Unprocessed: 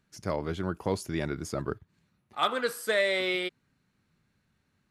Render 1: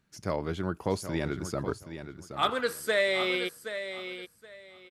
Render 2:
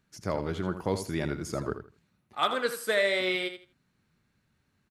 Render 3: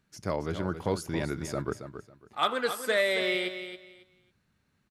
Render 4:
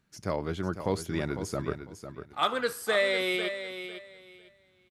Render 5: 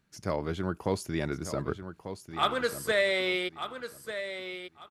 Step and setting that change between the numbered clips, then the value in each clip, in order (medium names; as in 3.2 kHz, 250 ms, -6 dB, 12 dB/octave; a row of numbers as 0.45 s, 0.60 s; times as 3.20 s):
feedback delay, time: 773 ms, 81 ms, 274 ms, 501 ms, 1193 ms